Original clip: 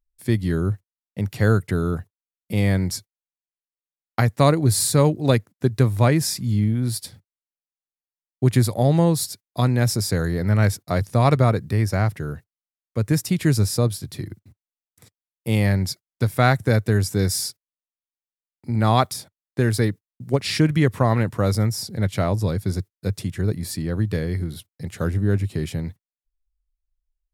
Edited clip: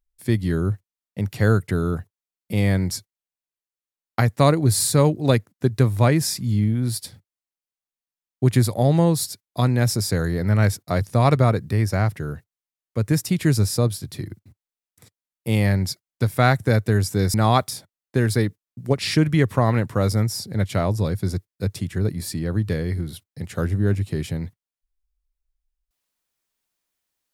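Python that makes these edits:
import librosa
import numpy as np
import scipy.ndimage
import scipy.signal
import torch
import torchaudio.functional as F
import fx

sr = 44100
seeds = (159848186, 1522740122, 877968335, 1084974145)

y = fx.edit(x, sr, fx.cut(start_s=17.34, length_s=1.43), tone=tone)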